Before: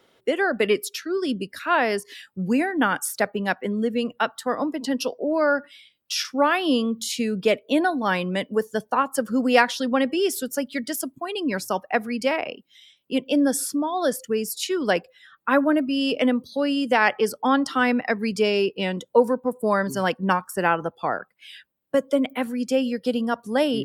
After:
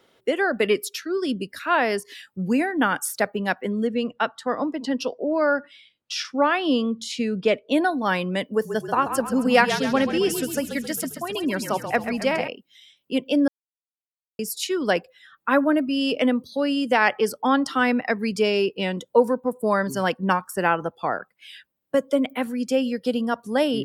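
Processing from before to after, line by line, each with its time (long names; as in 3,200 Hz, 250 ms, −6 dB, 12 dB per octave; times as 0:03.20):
0:03.87–0:07.72: high-frequency loss of the air 69 metres
0:08.46–0:12.48: echo with shifted repeats 134 ms, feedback 55%, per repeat −33 Hz, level −9 dB
0:13.48–0:14.39: silence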